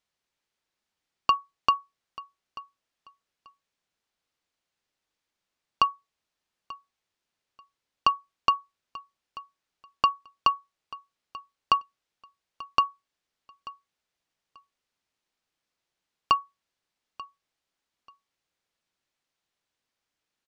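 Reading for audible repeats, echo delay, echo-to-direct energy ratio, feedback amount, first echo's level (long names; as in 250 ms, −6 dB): 2, 887 ms, −19.0 dB, 20%, −19.0 dB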